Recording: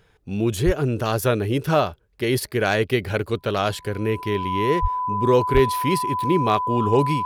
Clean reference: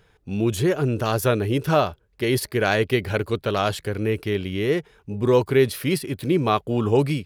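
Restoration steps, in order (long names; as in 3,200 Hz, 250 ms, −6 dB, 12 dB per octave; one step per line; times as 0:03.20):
clipped peaks rebuilt −8 dBFS
notch filter 1,000 Hz, Q 30
0:00.65–0:00.77: high-pass filter 140 Hz 24 dB per octave
0:04.81–0:04.93: high-pass filter 140 Hz 24 dB per octave
0:05.53–0:05.65: high-pass filter 140 Hz 24 dB per octave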